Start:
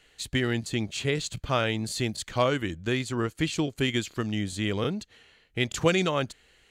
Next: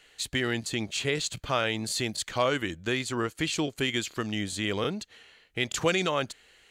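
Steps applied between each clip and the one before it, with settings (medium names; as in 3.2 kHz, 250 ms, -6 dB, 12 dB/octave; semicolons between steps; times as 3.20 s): bass shelf 270 Hz -9 dB; in parallel at 0 dB: peak limiter -22.5 dBFS, peak gain reduction 11.5 dB; on the sum: trim -3 dB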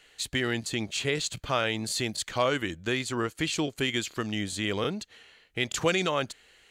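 no audible change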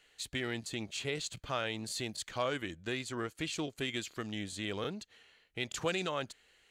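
loudspeaker Doppler distortion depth 0.11 ms; trim -8 dB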